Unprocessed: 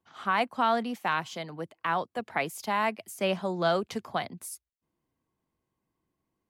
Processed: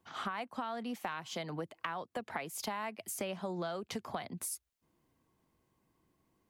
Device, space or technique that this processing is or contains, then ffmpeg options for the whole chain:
serial compression, peaks first: -af "acompressor=threshold=-36dB:ratio=6,acompressor=threshold=-46dB:ratio=2,volume=6.5dB"

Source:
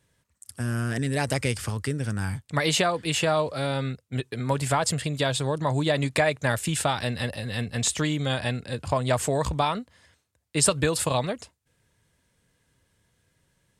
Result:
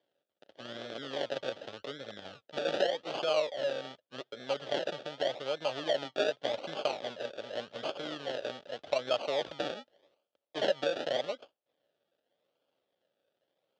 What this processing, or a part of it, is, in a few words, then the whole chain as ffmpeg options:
circuit-bent sampling toy: -filter_complex "[0:a]asettb=1/sr,asplit=3[link_01][link_02][link_03];[link_01]atrim=end=5.024[link_04];[link_02]atrim=start=5.02:end=6.42,asetpts=PTS-STARTPTS,afade=type=in:duration=0.004:curve=qsin,afade=type=out:start_time=1.396:duration=0.004:curve=qsin,acrossover=split=2900[link_05][link_06];[link_06]acompressor=threshold=-41dB:ratio=4:attack=1:release=60[link_07];[link_05][link_07]amix=inputs=2:normalize=0[link_08];[link_03]atrim=start=6.416[link_09];[link_04][link_08]acrossfade=duration=0.004:curve1=hsin:curve2=qsin[link_10];[link_10][link_09]acrossfade=duration=0.004:curve1=qsin:curve2=hsin,acrusher=samples=33:mix=1:aa=0.000001:lfo=1:lforange=19.8:lforate=0.85,highpass=450,equalizer=frequency=570:width_type=q:width=4:gain=9,equalizer=frequency=1000:width_type=q:width=4:gain=-9,equalizer=frequency=2200:width_type=q:width=4:gain=-5,equalizer=frequency=3300:width_type=q:width=4:gain=9,lowpass=frequency=5100:width=0.5412,lowpass=frequency=5100:width=1.3066,volume=-7.5dB"

